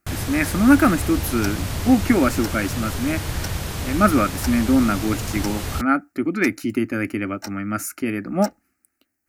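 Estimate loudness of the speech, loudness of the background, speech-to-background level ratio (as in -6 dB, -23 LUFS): -21.5 LUFS, -28.0 LUFS, 6.5 dB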